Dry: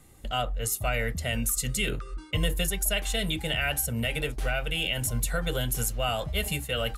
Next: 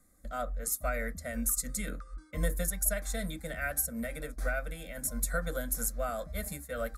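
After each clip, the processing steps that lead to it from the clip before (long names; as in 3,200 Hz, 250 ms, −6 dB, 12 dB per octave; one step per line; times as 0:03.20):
phaser with its sweep stopped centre 580 Hz, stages 8
expander for the loud parts 1.5 to 1, over −41 dBFS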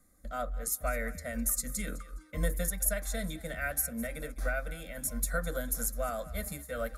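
notch filter 8,000 Hz, Q 12
feedback echo with a high-pass in the loop 207 ms, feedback 27%, high-pass 420 Hz, level −17 dB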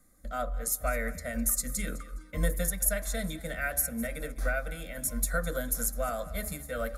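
hum removal 71.5 Hz, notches 17
on a send at −23 dB: convolution reverb RT60 1.7 s, pre-delay 20 ms
on the sum: level +2.5 dB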